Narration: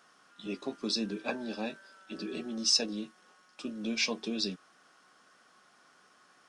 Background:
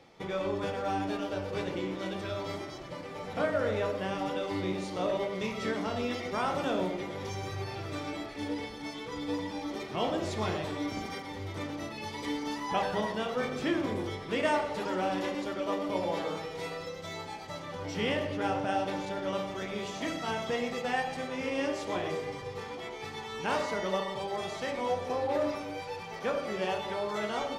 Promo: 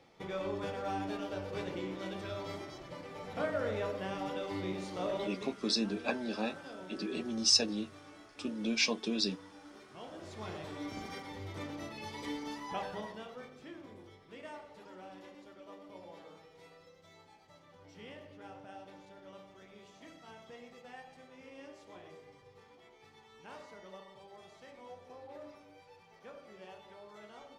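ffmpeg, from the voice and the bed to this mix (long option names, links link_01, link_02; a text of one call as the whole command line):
ffmpeg -i stem1.wav -i stem2.wav -filter_complex "[0:a]adelay=4800,volume=0.5dB[link_01];[1:a]volume=7.5dB,afade=type=out:start_time=5.19:duration=0.37:silence=0.237137,afade=type=in:start_time=10.11:duration=1.07:silence=0.237137,afade=type=out:start_time=12.23:duration=1.31:silence=0.188365[link_02];[link_01][link_02]amix=inputs=2:normalize=0" out.wav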